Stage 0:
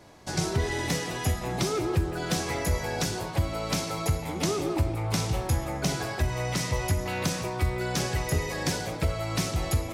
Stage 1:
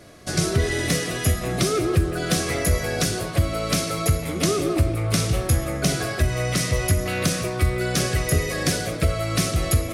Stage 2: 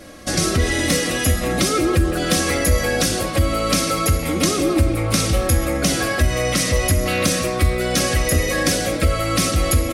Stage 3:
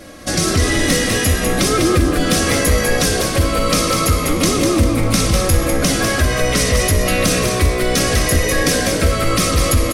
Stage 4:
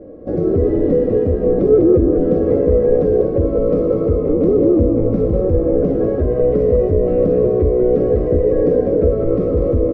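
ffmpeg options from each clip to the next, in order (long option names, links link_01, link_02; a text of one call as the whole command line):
ffmpeg -i in.wav -af "superequalizer=9b=0.251:16b=1.78,volume=6dB" out.wav
ffmpeg -i in.wav -filter_complex "[0:a]aecho=1:1:3.7:0.6,asplit=2[link_01][link_02];[link_02]alimiter=limit=-18dB:level=0:latency=1,volume=-0.5dB[link_03];[link_01][link_03]amix=inputs=2:normalize=0" out.wav
ffmpeg -i in.wav -filter_complex "[0:a]acontrast=42,asplit=2[link_01][link_02];[link_02]asplit=4[link_03][link_04][link_05][link_06];[link_03]adelay=199,afreqshift=-64,volume=-5dB[link_07];[link_04]adelay=398,afreqshift=-128,volume=-14.1dB[link_08];[link_05]adelay=597,afreqshift=-192,volume=-23.2dB[link_09];[link_06]adelay=796,afreqshift=-256,volume=-32.4dB[link_10];[link_07][link_08][link_09][link_10]amix=inputs=4:normalize=0[link_11];[link_01][link_11]amix=inputs=2:normalize=0,volume=-3dB" out.wav
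ffmpeg -i in.wav -af "lowpass=frequency=450:width_type=q:width=4.9,volume=-3dB" out.wav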